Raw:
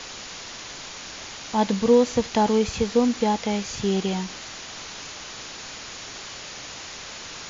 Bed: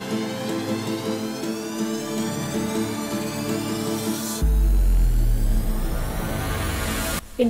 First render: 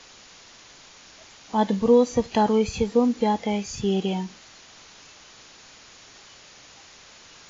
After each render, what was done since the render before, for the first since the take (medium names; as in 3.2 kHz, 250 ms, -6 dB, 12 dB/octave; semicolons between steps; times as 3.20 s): noise print and reduce 11 dB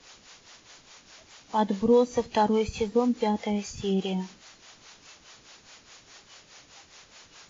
harmonic tremolo 4.8 Hz, depth 70%, crossover 420 Hz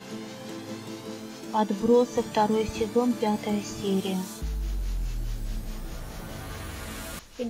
add bed -12 dB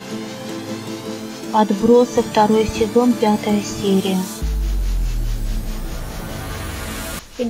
trim +10 dB; peak limiter -3 dBFS, peak gain reduction 2.5 dB